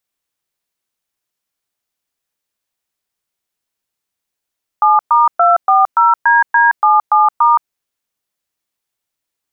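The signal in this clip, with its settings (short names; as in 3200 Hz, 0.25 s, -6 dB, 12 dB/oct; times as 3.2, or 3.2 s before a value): DTMF "7*240DD77*", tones 0.171 s, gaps 0.116 s, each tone -9.5 dBFS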